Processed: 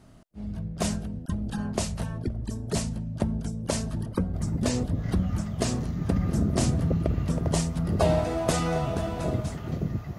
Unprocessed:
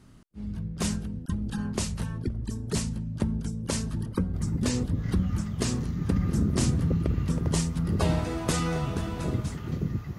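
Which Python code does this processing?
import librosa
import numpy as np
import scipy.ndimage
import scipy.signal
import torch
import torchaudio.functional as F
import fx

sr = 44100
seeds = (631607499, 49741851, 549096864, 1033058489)

y = fx.peak_eq(x, sr, hz=660.0, db=11.5, octaves=0.5)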